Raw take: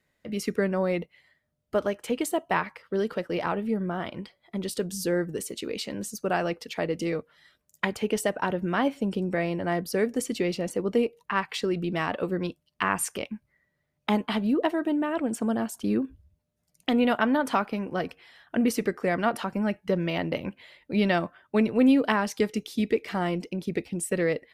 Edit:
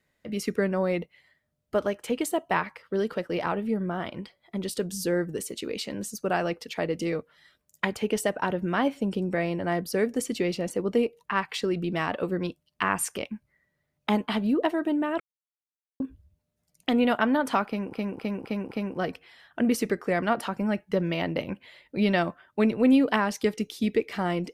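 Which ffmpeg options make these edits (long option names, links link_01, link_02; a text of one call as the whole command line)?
ffmpeg -i in.wav -filter_complex "[0:a]asplit=7[link_01][link_02][link_03][link_04][link_05][link_06][link_07];[link_01]atrim=end=15.2,asetpts=PTS-STARTPTS,afade=type=out:start_time=15.196:duration=0.004:curve=hsin[link_08];[link_02]atrim=start=15.2:end=16,asetpts=PTS-STARTPTS,volume=0[link_09];[link_03]atrim=start=16:end=17.932,asetpts=PTS-STARTPTS,afade=type=in:duration=0.004:curve=hsin[link_10];[link_04]atrim=start=17.668:end=17.932[link_11];[link_05]atrim=start=17.668:end=17.932[link_12];[link_06]atrim=start=17.668:end=17.932[link_13];[link_07]atrim=start=17.668[link_14];[link_08][link_09][link_10]concat=n=3:v=0:a=1[link_15];[link_15][link_11]acrossfade=duration=0.004:curve1=hsin:curve2=hsin[link_16];[link_16][link_12]acrossfade=duration=0.004:curve1=hsin:curve2=hsin[link_17];[link_17][link_13]acrossfade=duration=0.004:curve1=hsin:curve2=hsin[link_18];[link_18][link_14]acrossfade=duration=0.004:curve1=hsin:curve2=hsin" out.wav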